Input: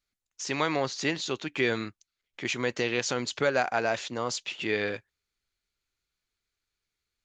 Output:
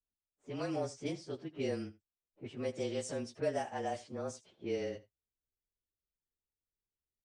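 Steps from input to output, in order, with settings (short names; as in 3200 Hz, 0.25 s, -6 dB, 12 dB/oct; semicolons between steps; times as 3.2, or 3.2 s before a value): inharmonic rescaling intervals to 108%; band shelf 2000 Hz -9.5 dB 2.6 oct; low-pass opened by the level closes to 640 Hz, open at -27 dBFS; on a send: echo 80 ms -19 dB; on the sum: gain -5 dB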